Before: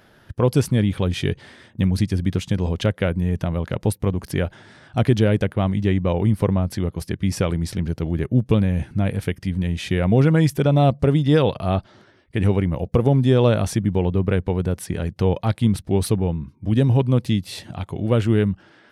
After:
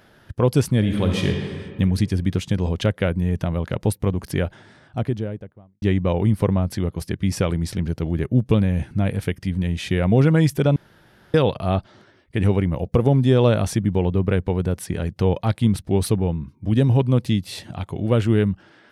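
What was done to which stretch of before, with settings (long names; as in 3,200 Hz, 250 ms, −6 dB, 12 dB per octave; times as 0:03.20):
0:00.78–0:01.29: thrown reverb, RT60 2 s, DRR 2 dB
0:04.32–0:05.82: fade out and dull
0:10.76–0:11.34: fill with room tone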